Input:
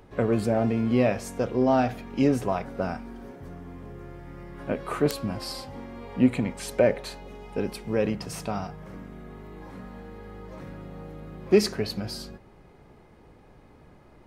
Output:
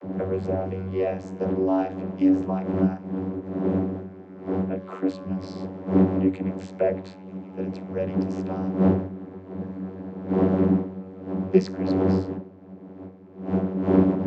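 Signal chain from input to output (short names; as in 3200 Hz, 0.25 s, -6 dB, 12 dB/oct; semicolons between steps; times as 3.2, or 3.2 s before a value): wind noise 330 Hz -25 dBFS; vocoder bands 32, saw 94.4 Hz; notch 1200 Hz, Q 19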